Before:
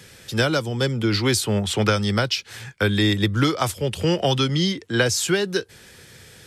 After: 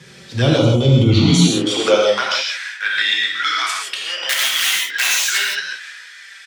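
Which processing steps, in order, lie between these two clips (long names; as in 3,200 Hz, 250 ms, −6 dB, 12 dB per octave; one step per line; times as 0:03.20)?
low-pass filter 6,500 Hz 12 dB per octave
transient designer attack −9 dB, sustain +5 dB
0:01.13–0:01.85: frequency shifter −90 Hz
0:04.29–0:05.38: wrap-around overflow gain 15.5 dB
high-pass filter sweep 96 Hz → 1,700 Hz, 0:01.12–0:02.46
flanger swept by the level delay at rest 6.2 ms, full sweep at −18 dBFS
far-end echo of a speakerphone 160 ms, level −19 dB
reverb whose tail is shaped and stops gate 190 ms flat, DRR −3 dB
level +4.5 dB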